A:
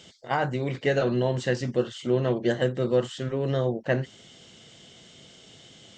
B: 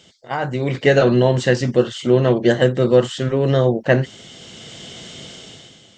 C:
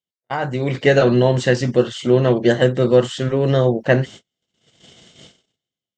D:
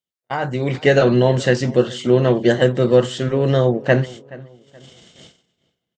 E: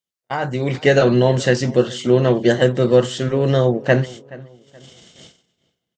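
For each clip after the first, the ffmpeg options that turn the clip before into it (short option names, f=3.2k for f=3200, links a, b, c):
-af "dynaudnorm=f=110:g=11:m=14.5dB"
-af "agate=range=-43dB:threshold=-34dB:ratio=16:detection=peak"
-filter_complex "[0:a]asplit=2[a][b];[b]adelay=425,lowpass=f=2.8k:p=1,volume=-20.5dB,asplit=2[c][d];[d]adelay=425,lowpass=f=2.8k:p=1,volume=0.35,asplit=2[e][f];[f]adelay=425,lowpass=f=2.8k:p=1,volume=0.35[g];[a][c][e][g]amix=inputs=4:normalize=0"
-af "equalizer=f=6k:w=1.5:g=3.5"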